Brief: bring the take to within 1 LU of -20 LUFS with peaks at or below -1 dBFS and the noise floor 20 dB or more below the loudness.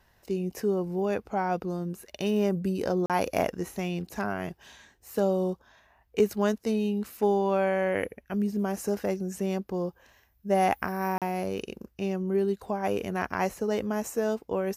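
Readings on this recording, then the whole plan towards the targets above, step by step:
dropouts 2; longest dropout 37 ms; loudness -29.0 LUFS; peak level -11.0 dBFS; loudness target -20.0 LUFS
-> interpolate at 3.06/11.18 s, 37 ms; trim +9 dB

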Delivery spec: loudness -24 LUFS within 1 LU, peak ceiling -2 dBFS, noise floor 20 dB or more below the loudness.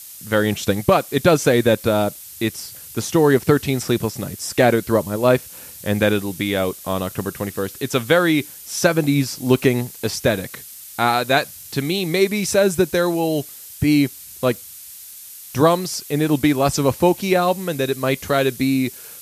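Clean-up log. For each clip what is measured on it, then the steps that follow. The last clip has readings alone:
noise floor -39 dBFS; noise floor target -40 dBFS; loudness -19.5 LUFS; peak level -1.5 dBFS; loudness target -24.0 LUFS
-> noise reduction 6 dB, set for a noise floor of -39 dBFS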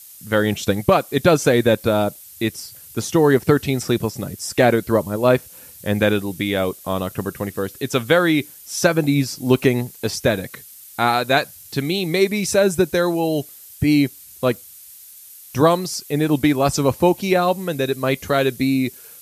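noise floor -43 dBFS; loudness -19.5 LUFS; peak level -1.5 dBFS; loudness target -24.0 LUFS
-> trim -4.5 dB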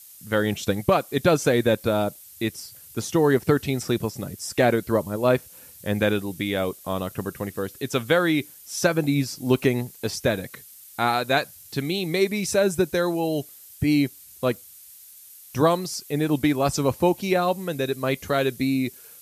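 loudness -24.0 LUFS; peak level -6.0 dBFS; noise floor -47 dBFS

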